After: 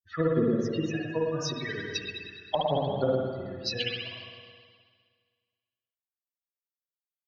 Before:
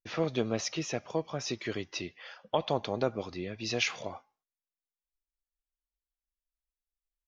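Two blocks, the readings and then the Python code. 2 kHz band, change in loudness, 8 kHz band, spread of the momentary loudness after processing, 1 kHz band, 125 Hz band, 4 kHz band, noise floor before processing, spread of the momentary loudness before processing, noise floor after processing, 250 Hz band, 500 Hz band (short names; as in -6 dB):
+1.0 dB, +3.5 dB, n/a, 12 LU, +3.0 dB, +5.5 dB, +3.0 dB, under -85 dBFS, 11 LU, under -85 dBFS, +5.5 dB, +4.5 dB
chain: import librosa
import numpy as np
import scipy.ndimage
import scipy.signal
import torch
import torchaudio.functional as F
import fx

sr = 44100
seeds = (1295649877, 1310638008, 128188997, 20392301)

y = fx.bin_expand(x, sr, power=3.0)
y = fx.env_lowpass_down(y, sr, base_hz=570.0, full_db=-31.5)
y = fx.high_shelf(y, sr, hz=2300.0, db=8.5)
y = fx.rev_spring(y, sr, rt60_s=1.8, pass_ms=(52, 56), chirp_ms=80, drr_db=-4.0)
y = F.gain(torch.from_numpy(y), 6.0).numpy()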